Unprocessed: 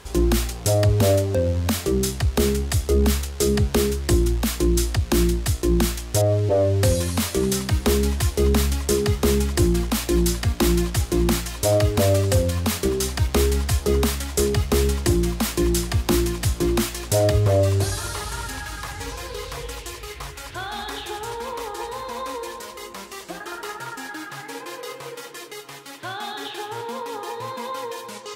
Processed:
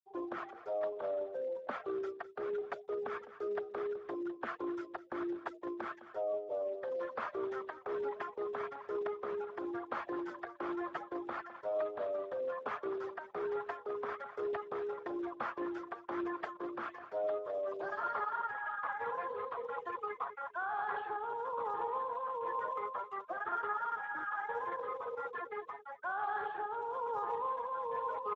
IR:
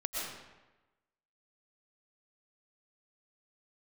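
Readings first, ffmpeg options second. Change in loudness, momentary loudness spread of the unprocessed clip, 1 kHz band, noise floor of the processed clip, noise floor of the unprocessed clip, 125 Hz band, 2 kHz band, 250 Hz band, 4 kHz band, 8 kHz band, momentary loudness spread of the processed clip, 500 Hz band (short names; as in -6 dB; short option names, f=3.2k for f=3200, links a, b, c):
-17.0 dB, 14 LU, -5.0 dB, -55 dBFS, -38 dBFS, under -40 dB, -10.0 dB, -20.5 dB, -32.0 dB, under -40 dB, 5 LU, -13.5 dB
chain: -af "highpass=f=440:w=0.5412,highpass=f=440:w=1.3066,afftfilt=real='re*gte(hypot(re,im),0.0282)':imag='im*gte(hypot(re,im),0.0282)':win_size=1024:overlap=0.75,aemphasis=mode=reproduction:type=75fm,areverse,acompressor=threshold=-36dB:ratio=8,areverse,lowpass=f=1.4k:t=q:w=2,tremolo=f=1.1:d=0.31,aecho=1:1:206:0.211" -ar 32000 -c:a libspeex -b:a 15k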